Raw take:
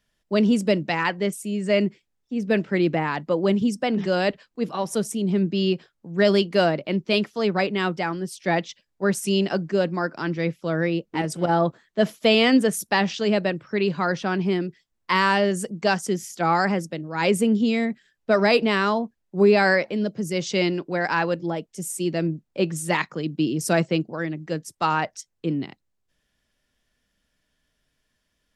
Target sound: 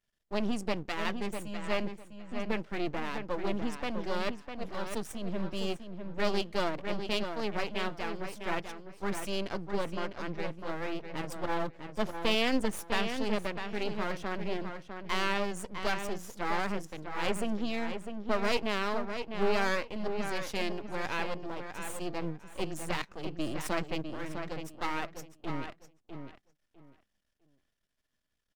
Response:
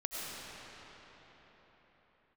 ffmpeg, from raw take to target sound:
-filter_complex "[0:a]aeval=exprs='max(val(0),0)':c=same,asettb=1/sr,asplit=3[a][b][c];[a]atrim=end=9.354[d];[b]atrim=start=9.35:end=10.59,asetpts=PTS-STARTPTS,afade=t=in:d=0.004:c=qsin,afade=t=out:st=1.236:d=0.004:c=qsin,adynamicsmooth=sensitivity=7:basefreq=7.4k[e];[c]atrim=start=10.586[f];[d][e]acrossfade=d=0.004:c1=hsin:c2=qsin[g];[g][f]acrossfade=d=0.004:c1=qsin:c2=hsin,asplit=2[h][i];[i]adelay=652,lowpass=f=3.7k:p=1,volume=-7dB,asplit=2[j][k];[k]adelay=652,lowpass=f=3.7k:p=1,volume=0.21,asplit=2[l][m];[m]adelay=652,lowpass=f=3.7k:p=1,volume=0.21[n];[j][l][n]amix=inputs=3:normalize=0[o];[h][o]amix=inputs=2:normalize=0,volume=-7.5dB"

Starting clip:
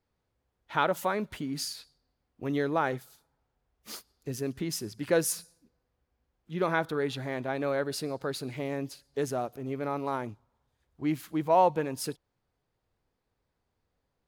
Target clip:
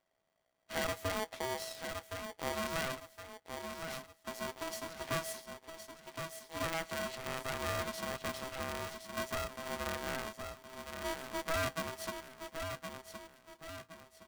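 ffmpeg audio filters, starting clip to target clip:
-af "highshelf=f=4.5k:g=-9.5,asoftclip=type=tanh:threshold=-25.5dB,asetnsamples=n=441:p=0,asendcmd='2.52 highpass f 350',highpass=68,aecho=1:1:1066|2132|3198|4264:0.335|0.121|0.0434|0.0156,aeval=exprs='max(val(0),0)':c=same,flanger=delay=2.5:depth=9.1:regen=-57:speed=0.33:shape=triangular,acompressor=threshold=-46dB:ratio=1.5,aeval=exprs='val(0)*sgn(sin(2*PI*650*n/s))':c=same,volume=7dB"

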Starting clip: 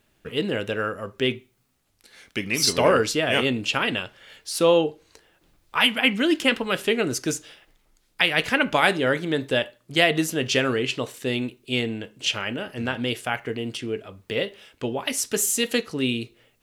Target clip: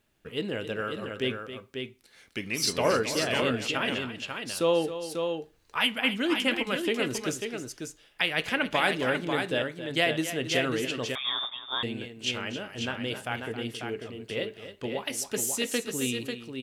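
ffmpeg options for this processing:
-filter_complex "[0:a]asplit=2[a][b];[b]aecho=0:1:269|543:0.251|0.501[c];[a][c]amix=inputs=2:normalize=0,asettb=1/sr,asplit=3[d][e][f];[d]atrim=end=11.154[g];[e]atrim=start=11.15:end=11.83,asetpts=PTS-STARTPTS,afade=t=in:d=0.004:c=qsin,afade=t=out:st=0.676:d=0.004:c=qsin,lowpass=f=3.2k:t=q:w=0.5098,lowpass=f=3.2k:t=q:w=0.6013,lowpass=f=3.2k:t=q:w=0.9,lowpass=f=3.2k:t=q:w=2.563,afreqshift=-3800[h];[f]atrim=start=11.826[i];[g][h]acrossfade=d=0.004:c1=hsin:c2=qsin[j];[j][i]acrossfade=d=0.004:c1=qsin:c2=hsin,volume=-6.5dB"

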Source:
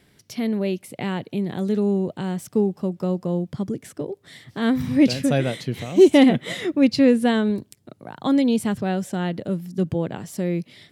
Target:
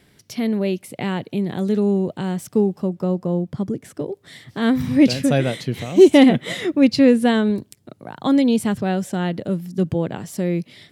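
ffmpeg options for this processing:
-filter_complex "[0:a]asplit=3[a][b][c];[a]afade=t=out:st=2.82:d=0.02[d];[b]adynamicequalizer=threshold=0.00501:dfrequency=1700:dqfactor=0.7:tfrequency=1700:tqfactor=0.7:attack=5:release=100:ratio=0.375:range=3:mode=cutabove:tftype=highshelf,afade=t=in:st=2.82:d=0.02,afade=t=out:st=4:d=0.02[e];[c]afade=t=in:st=4:d=0.02[f];[d][e][f]amix=inputs=3:normalize=0,volume=2.5dB"

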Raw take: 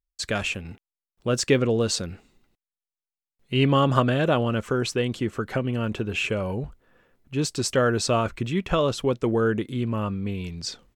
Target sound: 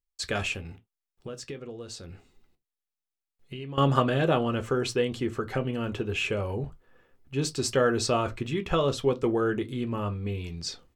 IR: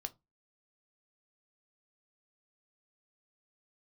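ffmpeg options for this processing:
-filter_complex "[0:a]asettb=1/sr,asplit=3[a][b][c];[a]atrim=end=0.594[d];[b]atrim=start=0.59:end=3.78,asetpts=PTS-STARTPTS,afade=t=in:d=0.004:c=qsin,afade=t=out:st=3.186:d=0.004:c=qsin,acompressor=threshold=-34dB:ratio=10[e];[c]atrim=start=3.776[f];[d][e]acrossfade=d=0.004:c1=hsin:c2=qsin[g];[g][f]acrossfade=d=0.004:c1=qsin:c2=hsin[h];[1:a]atrim=start_sample=2205,afade=t=out:st=0.15:d=0.01,atrim=end_sample=7056[i];[h][i]afir=irnorm=-1:irlink=0"

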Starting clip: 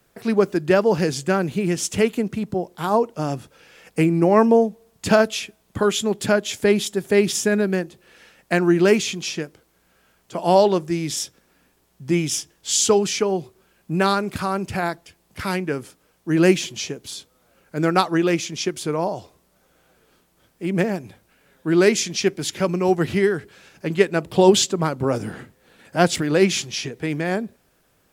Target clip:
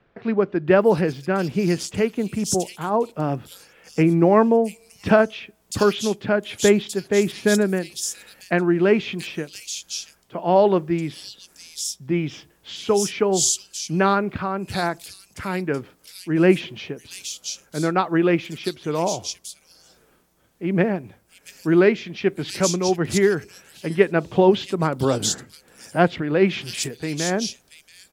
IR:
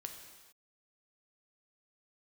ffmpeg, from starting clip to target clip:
-filter_complex "[0:a]acrossover=split=3400[a][b];[b]adelay=680[c];[a][c]amix=inputs=2:normalize=0,tremolo=f=1.2:d=0.37,volume=1.5dB"

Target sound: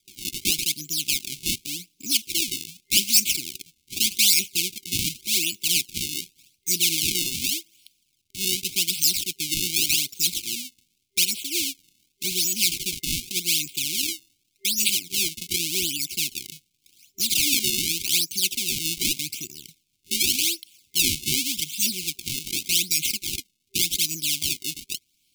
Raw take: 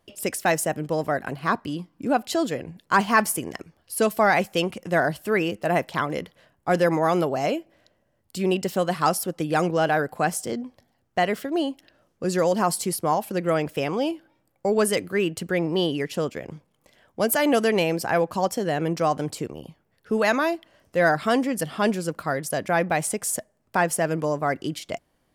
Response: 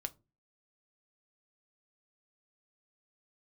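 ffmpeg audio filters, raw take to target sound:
-af "acrusher=samples=31:mix=1:aa=0.000001:lfo=1:lforange=49.6:lforate=0.86,aexciter=amount=7.7:drive=8.7:freq=2.3k,afftfilt=real='re*(1-between(b*sr/4096,390,2100))':imag='im*(1-between(b*sr/4096,390,2100))':win_size=4096:overlap=0.75,volume=-12dB"

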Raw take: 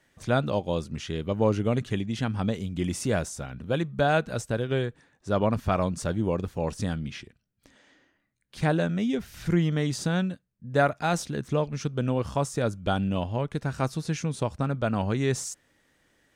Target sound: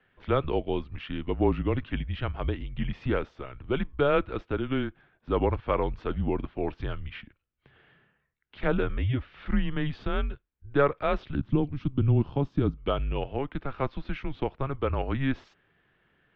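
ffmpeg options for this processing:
-filter_complex "[0:a]highpass=f=160:t=q:w=0.5412,highpass=f=160:t=q:w=1.307,lowpass=f=3.4k:t=q:w=0.5176,lowpass=f=3.4k:t=q:w=0.7071,lowpass=f=3.4k:t=q:w=1.932,afreqshift=-140,asettb=1/sr,asplit=3[a][b][c];[a]atrim=end=11.354[d];[b]atrim=start=11.35:end=12.78,asetpts=PTS-STARTPTS,afade=t=in:d=0.004:c=qsin,afade=t=out:st=1.426:d=0.004:c=qsin,equalizer=f=125:t=o:w=1:g=8,equalizer=f=250:t=o:w=1:g=6,equalizer=f=500:t=o:w=1:g=-5,equalizer=f=1k:t=o:w=1:g=-4,equalizer=f=2k:t=o:w=1:g=-9[e];[c]atrim=start=12.776[f];[d][e]acrossfade=d=0.004:c1=hsin:c2=qsin[g];[g][f]acrossfade=d=0.004:c1=qsin:c2=hsin"

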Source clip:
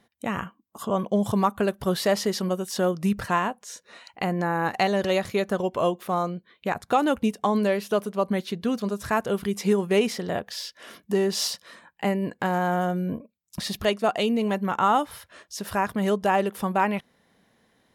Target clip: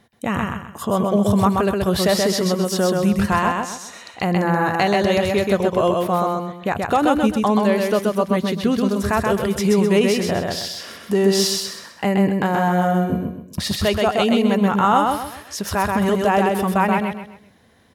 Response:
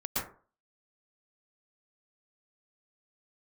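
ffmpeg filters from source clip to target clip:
-filter_complex "[0:a]equalizer=f=84:t=o:w=0.98:g=9.5,asplit=2[a][b];[b]alimiter=limit=-18.5dB:level=0:latency=1,volume=0dB[c];[a][c]amix=inputs=2:normalize=0,aecho=1:1:129|258|387|516:0.708|0.241|0.0818|0.0278"

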